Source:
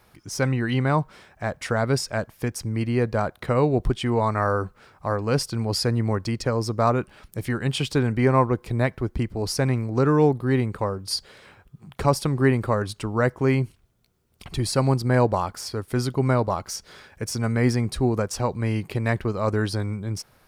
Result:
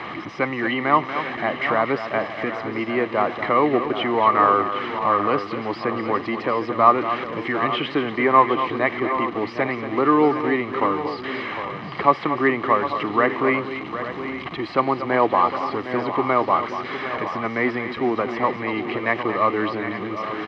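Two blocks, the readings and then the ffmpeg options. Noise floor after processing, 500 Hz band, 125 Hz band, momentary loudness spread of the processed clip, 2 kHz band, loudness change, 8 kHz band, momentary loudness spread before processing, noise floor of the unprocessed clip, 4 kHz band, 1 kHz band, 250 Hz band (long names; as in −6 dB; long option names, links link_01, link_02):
−33 dBFS, +2.5 dB, −13.0 dB, 10 LU, +7.0 dB, +2.5 dB, below −20 dB, 9 LU, −59 dBFS, −1.0 dB, +9.0 dB, +0.5 dB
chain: -filter_complex "[0:a]aeval=exprs='val(0)+0.5*0.0355*sgn(val(0))':channel_layout=same,acrossover=split=2800[link_01][link_02];[link_02]acompressor=threshold=-44dB:ratio=4:attack=1:release=60[link_03];[link_01][link_03]amix=inputs=2:normalize=0,equalizer=frequency=1200:width_type=o:width=0.25:gain=12,aecho=1:1:1:0.4,acrossover=split=320[link_04][link_05];[link_04]acompressor=threshold=-32dB:ratio=6[link_06];[link_06][link_05]amix=inputs=2:normalize=0,highpass=240,equalizer=frequency=320:width_type=q:width=4:gain=6,equalizer=frequency=930:width_type=q:width=4:gain=-4,equalizer=frequency=1300:width_type=q:width=4:gain=-7,equalizer=frequency=2200:width_type=q:width=4:gain=4,lowpass=frequency=3700:width=0.5412,lowpass=frequency=3700:width=1.3066,asplit=2[link_07][link_08];[link_08]aecho=0:1:235|758|845:0.299|0.282|0.224[link_09];[link_07][link_09]amix=inputs=2:normalize=0,volume=4.5dB"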